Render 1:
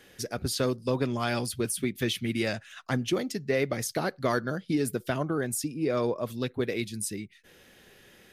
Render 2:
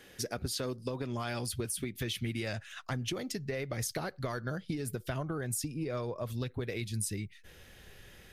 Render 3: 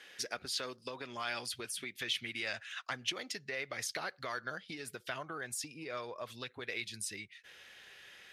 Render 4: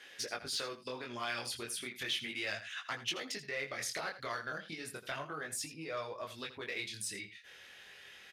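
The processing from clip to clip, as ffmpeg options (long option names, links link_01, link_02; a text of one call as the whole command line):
ffmpeg -i in.wav -af "alimiter=limit=-20.5dB:level=0:latency=1:release=179,acompressor=threshold=-31dB:ratio=6,asubboost=boost=5.5:cutoff=100" out.wav
ffmpeg -i in.wav -af "bandpass=frequency=2500:width_type=q:width=0.66:csg=0,volume=4dB" out.wav
ffmpeg -i in.wav -filter_complex "[0:a]flanger=delay=18:depth=7.9:speed=0.34,asplit=2[link_01][link_02];[link_02]asoftclip=type=hard:threshold=-39.5dB,volume=-9dB[link_03];[link_01][link_03]amix=inputs=2:normalize=0,aecho=1:1:82:0.211,volume=1dB" out.wav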